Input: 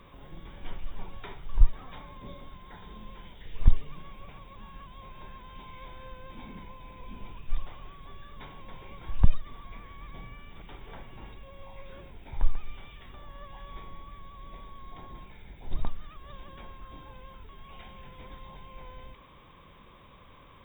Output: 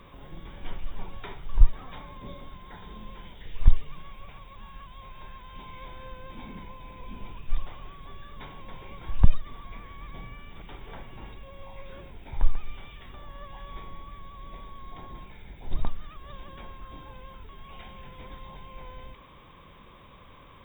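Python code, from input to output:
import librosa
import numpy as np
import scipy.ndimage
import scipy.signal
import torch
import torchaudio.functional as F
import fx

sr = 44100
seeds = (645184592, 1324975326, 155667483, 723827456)

y = fx.peak_eq(x, sr, hz=270.0, db=-5.5, octaves=2.4, at=(3.52, 5.54))
y = y * librosa.db_to_amplitude(2.5)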